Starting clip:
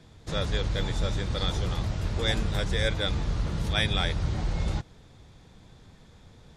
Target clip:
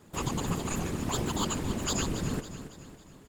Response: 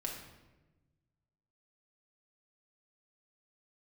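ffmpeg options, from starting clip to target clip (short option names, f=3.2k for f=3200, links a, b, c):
-af "afftfilt=real='hypot(re,im)*cos(2*PI*random(0))':imag='hypot(re,im)*sin(2*PI*random(1))':win_size=512:overlap=0.75,aecho=1:1:554|1108|1662|2216|2770:0.266|0.128|0.0613|0.0294|0.0141,asetrate=88200,aresample=44100,volume=2dB"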